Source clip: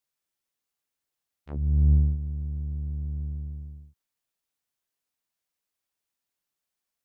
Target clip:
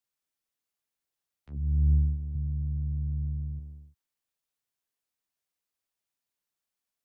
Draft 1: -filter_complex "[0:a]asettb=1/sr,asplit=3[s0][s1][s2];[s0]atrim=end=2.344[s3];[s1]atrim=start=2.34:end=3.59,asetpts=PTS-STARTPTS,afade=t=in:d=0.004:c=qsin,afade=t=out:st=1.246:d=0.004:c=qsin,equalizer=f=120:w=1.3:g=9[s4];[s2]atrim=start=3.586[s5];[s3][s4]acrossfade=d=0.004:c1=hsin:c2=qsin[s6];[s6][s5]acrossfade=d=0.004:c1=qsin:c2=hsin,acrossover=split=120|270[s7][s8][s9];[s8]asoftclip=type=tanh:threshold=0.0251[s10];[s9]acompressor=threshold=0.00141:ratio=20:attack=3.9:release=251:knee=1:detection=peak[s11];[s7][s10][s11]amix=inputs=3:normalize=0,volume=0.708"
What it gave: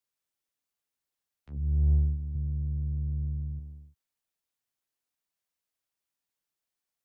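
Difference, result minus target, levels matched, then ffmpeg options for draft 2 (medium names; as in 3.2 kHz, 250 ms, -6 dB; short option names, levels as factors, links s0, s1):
saturation: distortion +16 dB
-filter_complex "[0:a]asettb=1/sr,asplit=3[s0][s1][s2];[s0]atrim=end=2.344[s3];[s1]atrim=start=2.34:end=3.59,asetpts=PTS-STARTPTS,afade=t=in:d=0.004:c=qsin,afade=t=out:st=1.246:d=0.004:c=qsin,equalizer=f=120:w=1.3:g=9[s4];[s2]atrim=start=3.586[s5];[s3][s4]acrossfade=d=0.004:c1=hsin:c2=qsin[s6];[s6][s5]acrossfade=d=0.004:c1=qsin:c2=hsin,acrossover=split=120|270[s7][s8][s9];[s8]asoftclip=type=tanh:threshold=0.0891[s10];[s9]acompressor=threshold=0.00141:ratio=20:attack=3.9:release=251:knee=1:detection=peak[s11];[s7][s10][s11]amix=inputs=3:normalize=0,volume=0.708"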